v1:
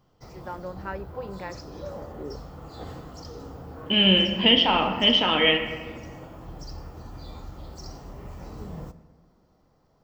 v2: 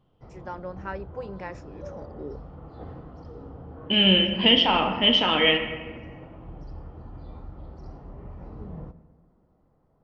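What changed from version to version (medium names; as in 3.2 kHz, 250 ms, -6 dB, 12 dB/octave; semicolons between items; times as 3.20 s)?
background: add tape spacing loss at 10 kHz 44 dB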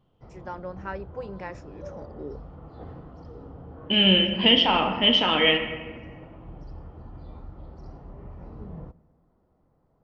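background: send -8.0 dB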